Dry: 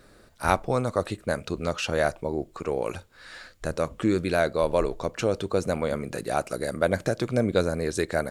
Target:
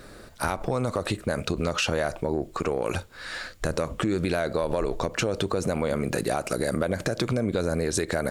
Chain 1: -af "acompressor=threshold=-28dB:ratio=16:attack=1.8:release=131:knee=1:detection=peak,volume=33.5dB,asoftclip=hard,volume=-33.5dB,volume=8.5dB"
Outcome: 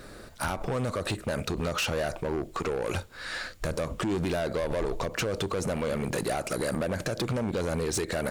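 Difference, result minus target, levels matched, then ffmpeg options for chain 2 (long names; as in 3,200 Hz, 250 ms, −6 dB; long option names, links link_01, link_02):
gain into a clipping stage and back: distortion +26 dB
-af "acompressor=threshold=-28dB:ratio=16:attack=1.8:release=131:knee=1:detection=peak,volume=22.5dB,asoftclip=hard,volume=-22.5dB,volume=8.5dB"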